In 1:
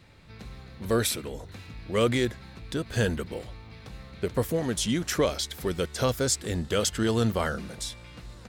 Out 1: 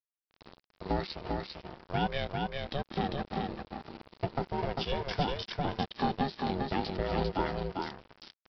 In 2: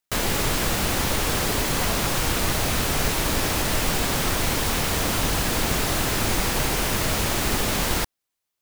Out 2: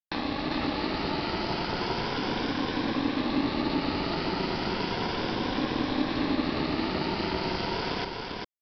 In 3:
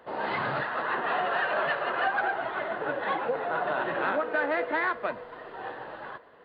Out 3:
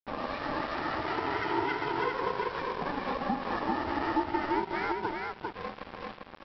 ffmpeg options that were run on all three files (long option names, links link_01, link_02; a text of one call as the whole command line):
ffmpeg -i in.wav -filter_complex "[0:a]afftfilt=real='re*pow(10,12/40*sin(2*PI*(1.4*log(max(b,1)*sr/1024/100)/log(2)-(0.34)*(pts-256)/sr)))':imag='im*pow(10,12/40*sin(2*PI*(1.4*log(max(b,1)*sr/1024/100)/log(2)-(0.34)*(pts-256)/sr)))':win_size=1024:overlap=0.75,acrossover=split=150|1700[link_01][link_02][link_03];[link_01]dynaudnorm=framelen=270:gausssize=11:maxgain=4dB[link_04];[link_04][link_02][link_03]amix=inputs=3:normalize=0,equalizer=frequency=630:width=1.9:gain=8,aeval=exprs='val(0)*sin(2*PI*280*n/s)':channel_layout=same,aresample=11025,aeval=exprs='sgn(val(0))*max(abs(val(0))-0.0168,0)':channel_layout=same,aresample=44100,acompressor=threshold=-36dB:ratio=2,crystalizer=i=4.5:c=0,highshelf=frequency=2000:gain=-10.5,aecho=1:1:398:0.668,volume=2dB" out.wav